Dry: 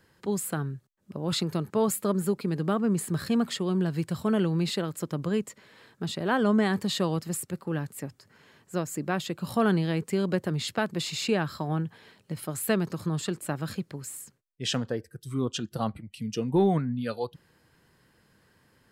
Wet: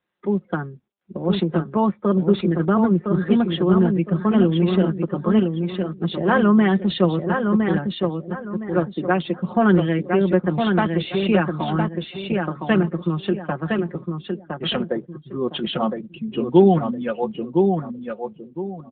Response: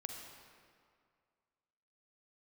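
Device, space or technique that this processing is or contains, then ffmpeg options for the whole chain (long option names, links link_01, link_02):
mobile call with aggressive noise cancelling: -af "highpass=frequency=41:poles=1,highpass=frequency=180:width=0.5412,highpass=frequency=180:width=1.3066,highshelf=frequency=8100:gain=-5,aecho=1:1:5.6:0.59,aecho=1:1:1011|2022|3033|4044:0.596|0.191|0.061|0.0195,afftdn=noise_reduction=33:noise_floor=-43,volume=7dB" -ar 8000 -c:a libopencore_amrnb -b:a 10200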